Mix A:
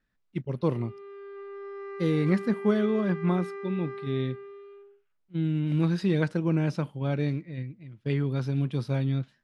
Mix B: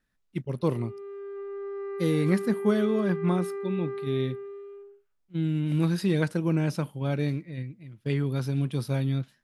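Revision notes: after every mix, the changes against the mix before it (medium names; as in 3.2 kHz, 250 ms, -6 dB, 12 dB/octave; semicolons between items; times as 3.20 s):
speech: remove distance through air 86 m; background: add tilt EQ -3.5 dB/octave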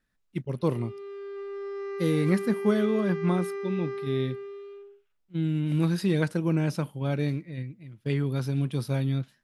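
background: remove low-pass 1.6 kHz 12 dB/octave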